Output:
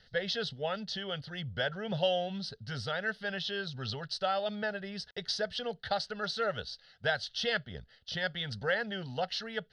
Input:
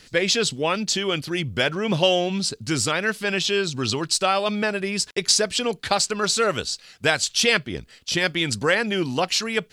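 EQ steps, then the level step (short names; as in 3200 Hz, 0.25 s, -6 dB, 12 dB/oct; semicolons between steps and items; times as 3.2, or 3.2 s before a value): air absorption 120 m; fixed phaser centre 1600 Hz, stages 8; -7.5 dB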